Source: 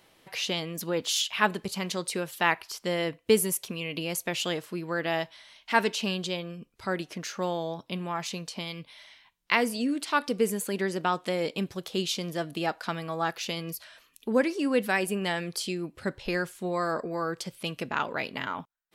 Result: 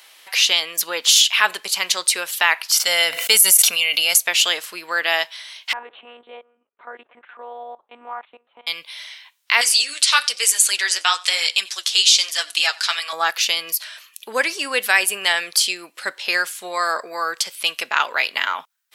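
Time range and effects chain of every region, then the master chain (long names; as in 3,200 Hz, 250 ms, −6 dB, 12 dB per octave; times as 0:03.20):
0:02.72–0:04.18: high-shelf EQ 4,700 Hz +8 dB + comb filter 1.4 ms, depth 46% + level that may fall only so fast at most 61 dB per second
0:05.73–0:08.67: Chebyshev low-pass filter 880 Hz + output level in coarse steps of 18 dB + one-pitch LPC vocoder at 8 kHz 240 Hz
0:09.61–0:13.13: flanger 1.1 Hz, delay 0.5 ms, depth 9.7 ms, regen +40% + meter weighting curve ITU-R 468 + single-tap delay 91 ms −23 dB
whole clip: high-pass filter 560 Hz 12 dB per octave; tilt shelving filter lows −8.5 dB, about 920 Hz; boost into a limiter +9.5 dB; level −1 dB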